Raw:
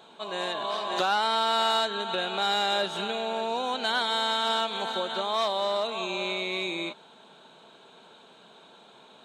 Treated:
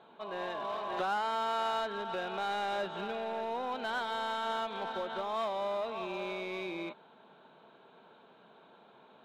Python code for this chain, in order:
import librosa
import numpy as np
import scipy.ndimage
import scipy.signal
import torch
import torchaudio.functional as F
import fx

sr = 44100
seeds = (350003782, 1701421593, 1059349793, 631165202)

p1 = scipy.signal.sosfilt(scipy.signal.butter(2, 2100.0, 'lowpass', fs=sr, output='sos'), x)
p2 = 10.0 ** (-30.5 / 20.0) * (np.abs((p1 / 10.0 ** (-30.5 / 20.0) + 3.0) % 4.0 - 2.0) - 1.0)
p3 = p1 + F.gain(torch.from_numpy(p2), -10.5).numpy()
y = F.gain(torch.from_numpy(p3), -6.5).numpy()